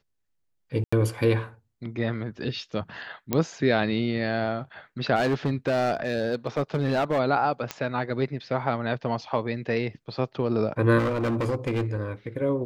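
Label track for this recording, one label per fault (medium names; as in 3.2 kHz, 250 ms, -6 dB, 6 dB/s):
0.840000	0.930000	dropout 85 ms
3.330000	3.330000	pop -9 dBFS
5.150000	7.200000	clipped -19.5 dBFS
7.710000	7.710000	pop -13 dBFS
10.980000	11.940000	clipped -22 dBFS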